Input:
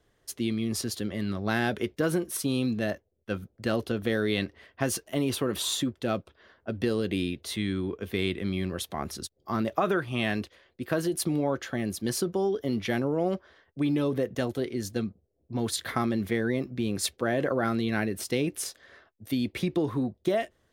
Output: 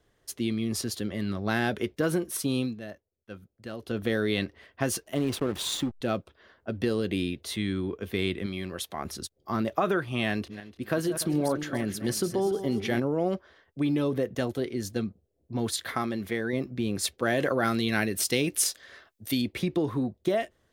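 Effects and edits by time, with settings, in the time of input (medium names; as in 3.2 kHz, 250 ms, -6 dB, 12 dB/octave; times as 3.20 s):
2.60–3.97 s: dip -11 dB, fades 0.16 s
5.15–6.01 s: hysteresis with a dead band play -31.5 dBFS
8.46–9.05 s: bass shelf 360 Hz -7 dB
10.31–13.00 s: backward echo that repeats 147 ms, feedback 53%, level -10.5 dB
15.71–16.53 s: bass shelf 320 Hz -6.5 dB
17.22–19.42 s: treble shelf 2.1 kHz +9.5 dB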